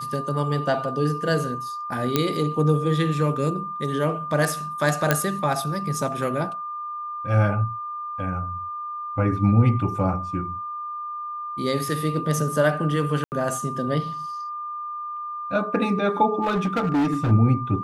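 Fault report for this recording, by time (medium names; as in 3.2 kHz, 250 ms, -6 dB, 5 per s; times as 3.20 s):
whine 1.2 kHz -29 dBFS
2.16 s: pop -5 dBFS
5.11 s: pop -3 dBFS
13.24–13.32 s: dropout 79 ms
16.41–17.32 s: clipped -18 dBFS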